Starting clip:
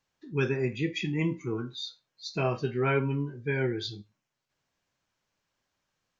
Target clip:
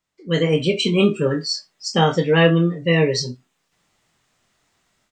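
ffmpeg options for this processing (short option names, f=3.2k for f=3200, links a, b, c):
-filter_complex "[0:a]asetrate=53361,aresample=44100,asplit=2[a][b];[b]adelay=24,volume=-6.5dB[c];[a][c]amix=inputs=2:normalize=0,dynaudnorm=f=240:g=3:m=14.5dB,volume=-1dB"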